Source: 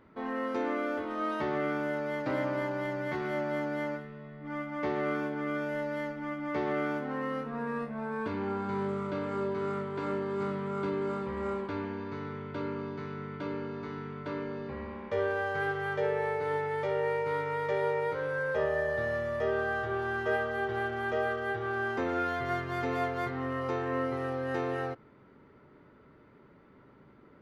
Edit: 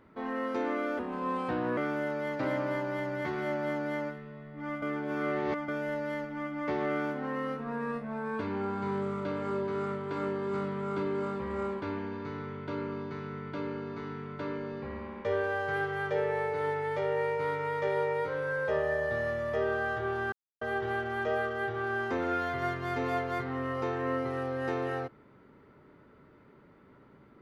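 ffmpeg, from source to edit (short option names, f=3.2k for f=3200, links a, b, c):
-filter_complex "[0:a]asplit=7[a][b][c][d][e][f][g];[a]atrim=end=0.994[h];[b]atrim=start=0.99:end=1.64,asetpts=PTS-STARTPTS,asetrate=36603,aresample=44100,atrim=end_sample=34536,asetpts=PTS-STARTPTS[i];[c]atrim=start=1.636:end=4.692[j];[d]atrim=start=4.688:end=5.552,asetpts=PTS-STARTPTS,areverse[k];[e]atrim=start=5.548:end=20.19,asetpts=PTS-STARTPTS,afade=t=out:st=14.638:d=0.004:c=hsin[l];[f]atrim=start=20.19:end=20.48,asetpts=PTS-STARTPTS,volume=0[m];[g]atrim=start=20.48,asetpts=PTS-STARTPTS,afade=t=in:d=0.004:c=hsin[n];[h][i]acrossfade=d=0.004:c1=hsin:c2=hsin[o];[o][j]acrossfade=d=0.004:c1=hsin:c2=hsin[p];[p][k]acrossfade=d=0.004:c1=hsin:c2=hsin[q];[l][m][n]concat=n=3:v=0:a=1[r];[q][r]acrossfade=d=0.004:c1=hsin:c2=hsin"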